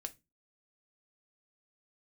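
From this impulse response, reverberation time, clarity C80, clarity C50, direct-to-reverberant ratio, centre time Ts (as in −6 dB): non-exponential decay, 30.5 dB, 21.0 dB, 7.0 dB, 3 ms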